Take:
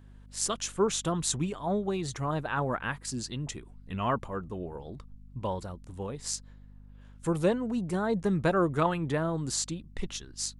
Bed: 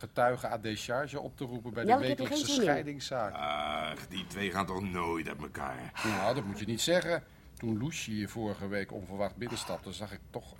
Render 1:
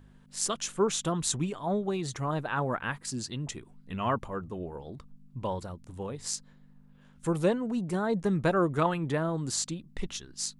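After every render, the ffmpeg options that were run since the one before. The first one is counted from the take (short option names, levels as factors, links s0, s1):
-af "bandreject=f=50:t=h:w=4,bandreject=f=100:t=h:w=4"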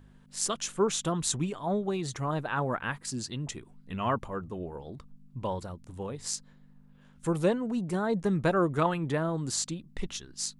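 -af anull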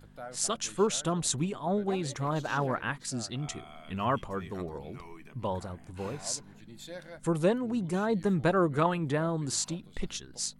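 -filter_complex "[1:a]volume=0.168[s0];[0:a][s0]amix=inputs=2:normalize=0"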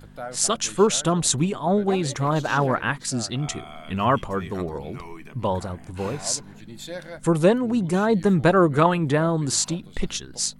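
-af "volume=2.66"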